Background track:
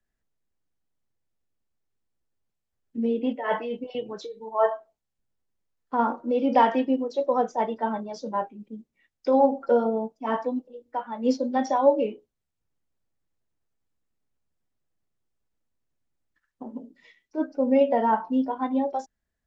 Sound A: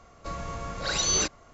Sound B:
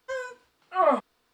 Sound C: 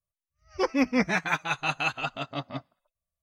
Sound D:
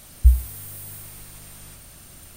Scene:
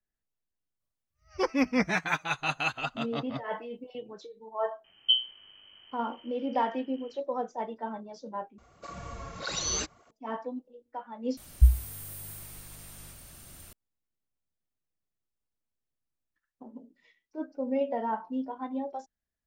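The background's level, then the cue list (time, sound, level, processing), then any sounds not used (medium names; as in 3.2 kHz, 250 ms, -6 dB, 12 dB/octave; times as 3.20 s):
background track -9 dB
0.80 s: add C -2 dB
4.84 s: add D -13 dB + frequency inversion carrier 3.1 kHz
8.58 s: replace with A -3 dB + cancelling through-zero flanger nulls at 1.7 Hz, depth 7.7 ms
11.37 s: replace with D -4.5 dB
not used: B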